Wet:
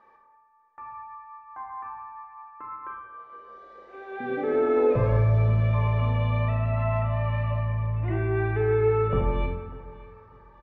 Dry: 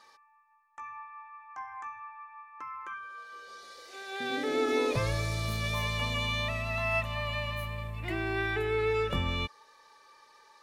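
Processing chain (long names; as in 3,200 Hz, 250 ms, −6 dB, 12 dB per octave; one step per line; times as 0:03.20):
parametric band 4,400 Hz −13.5 dB 1.2 octaves
hum removal 87.62 Hz, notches 3
soft clipping −19.5 dBFS, distortion −26 dB
head-to-tape spacing loss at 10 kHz 43 dB
repeating echo 595 ms, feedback 30%, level −19.5 dB
on a send at −2 dB: convolution reverb RT60 1.1 s, pre-delay 27 ms
on the sum: level +6.5 dB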